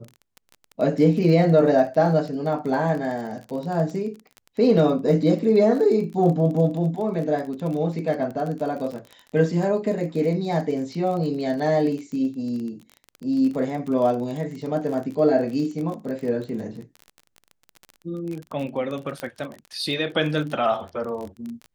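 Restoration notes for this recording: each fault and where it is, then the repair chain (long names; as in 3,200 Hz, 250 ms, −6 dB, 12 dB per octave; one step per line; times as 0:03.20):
surface crackle 30 per second −30 dBFS
0:19.20: click −16 dBFS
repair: click removal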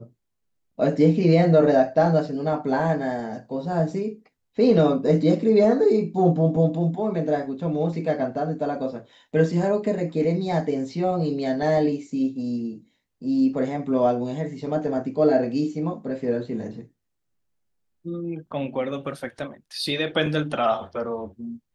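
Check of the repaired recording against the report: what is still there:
none of them is left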